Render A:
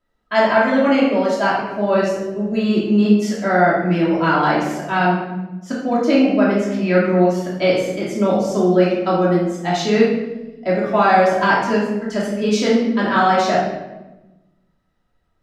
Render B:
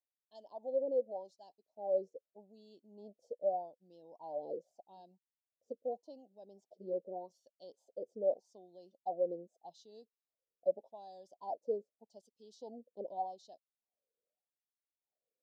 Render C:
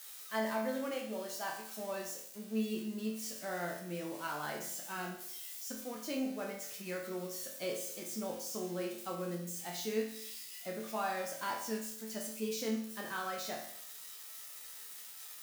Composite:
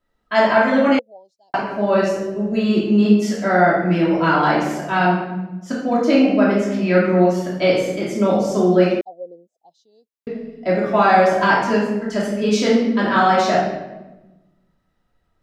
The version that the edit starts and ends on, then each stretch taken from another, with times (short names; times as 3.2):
A
0.99–1.54 from B
9.01–10.27 from B
not used: C